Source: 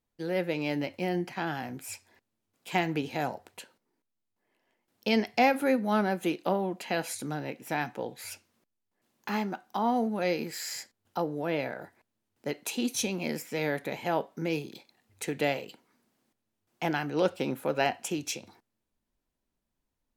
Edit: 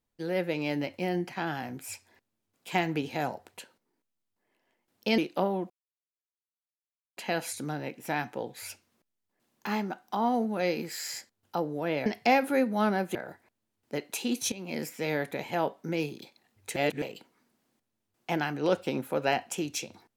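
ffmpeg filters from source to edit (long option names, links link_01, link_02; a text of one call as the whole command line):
ffmpeg -i in.wav -filter_complex "[0:a]asplit=8[link_01][link_02][link_03][link_04][link_05][link_06][link_07][link_08];[link_01]atrim=end=5.182[link_09];[link_02]atrim=start=6.268:end=6.79,asetpts=PTS-STARTPTS,afade=type=out:start_time=0.518:duration=0.004:curve=hsin,apad=pad_dur=1.47[link_10];[link_03]atrim=start=6.79:end=11.682,asetpts=PTS-STARTPTS,afade=type=in:duration=0.004:curve=hsin[link_11];[link_04]atrim=start=5.178:end=6.272[link_12];[link_05]atrim=start=11.678:end=13.05,asetpts=PTS-STARTPTS,afade=type=out:start_time=1.368:duration=0.004:curve=hsin:silence=0.199526[link_13];[link_06]atrim=start=13.05:end=15.292,asetpts=PTS-STARTPTS,afade=type=in:duration=0.31:silence=0.199526[link_14];[link_07]atrim=start=15.288:end=15.552,asetpts=PTS-STARTPTS,areverse[link_15];[link_08]atrim=start=15.548[link_16];[link_10][link_11]concat=n=2:v=0:a=1[link_17];[link_09][link_17]acrossfade=duration=0.004:curve1=hsin:curve2=hsin[link_18];[link_18][link_12]acrossfade=duration=0.004:curve1=hsin:curve2=hsin[link_19];[link_13][link_14]concat=n=2:v=0:a=1[link_20];[link_19][link_20]acrossfade=duration=0.004:curve1=hsin:curve2=hsin[link_21];[link_21][link_15]acrossfade=duration=0.004:curve1=hsin:curve2=hsin[link_22];[link_22][link_16]acrossfade=duration=0.004:curve1=hsin:curve2=hsin" out.wav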